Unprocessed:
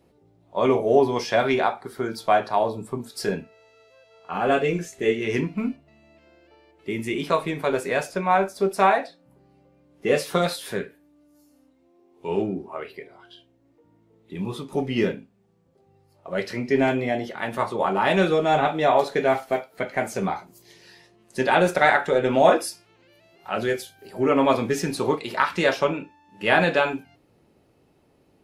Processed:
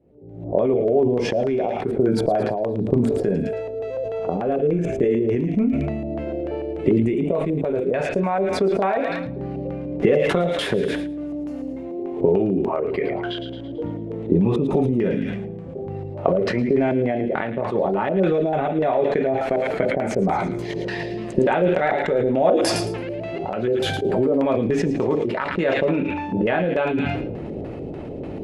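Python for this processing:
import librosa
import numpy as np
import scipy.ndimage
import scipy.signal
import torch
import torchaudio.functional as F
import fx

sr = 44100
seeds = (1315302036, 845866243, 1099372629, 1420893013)

y = fx.recorder_agc(x, sr, target_db=-12.0, rise_db_per_s=65.0, max_gain_db=30)
y = fx.band_shelf(y, sr, hz=2200.0, db=fx.steps((0.0, -15.5), (7.92, -8.0)), octaves=3.0)
y = fx.filter_lfo_lowpass(y, sr, shape='square', hz=3.4, low_hz=580.0, high_hz=2500.0, q=1.1)
y = fx.echo_wet_highpass(y, sr, ms=111, feedback_pct=47, hz=2300.0, wet_db=-5.5)
y = fx.sustainer(y, sr, db_per_s=27.0)
y = y * 10.0 ** (-1.0 / 20.0)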